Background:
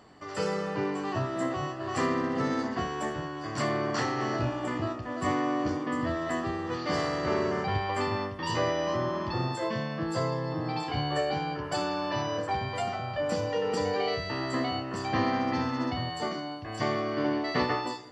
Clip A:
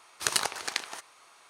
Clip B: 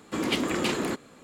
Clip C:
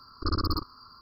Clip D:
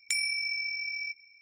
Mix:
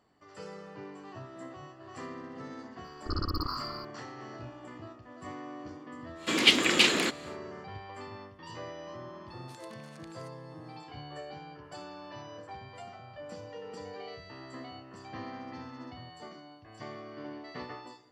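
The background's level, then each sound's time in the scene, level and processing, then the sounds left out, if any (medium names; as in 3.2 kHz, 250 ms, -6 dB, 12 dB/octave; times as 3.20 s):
background -14.5 dB
2.84 s: add C -5.5 dB + decay stretcher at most 33 dB/s
6.15 s: add B -1 dB, fades 0.10 s + frequency weighting D
9.28 s: add A -17 dB + compression 5:1, threshold -37 dBFS
not used: D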